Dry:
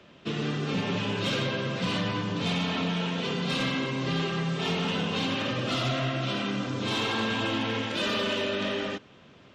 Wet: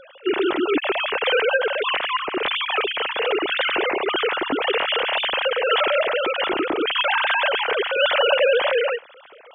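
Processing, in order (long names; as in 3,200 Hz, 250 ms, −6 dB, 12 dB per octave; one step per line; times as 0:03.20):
three sine waves on the formant tracks
level +7.5 dB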